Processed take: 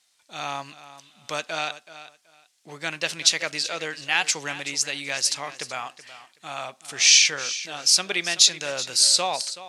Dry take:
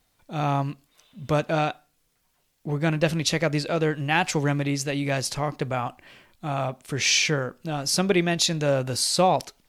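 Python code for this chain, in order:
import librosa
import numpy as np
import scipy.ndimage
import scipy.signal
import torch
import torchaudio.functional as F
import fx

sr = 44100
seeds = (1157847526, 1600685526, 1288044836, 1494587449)

p1 = fx.weighting(x, sr, curve='ITU-R 468')
p2 = p1 + fx.echo_feedback(p1, sr, ms=377, feedback_pct=20, wet_db=-15, dry=0)
y = p2 * librosa.db_to_amplitude(-4.0)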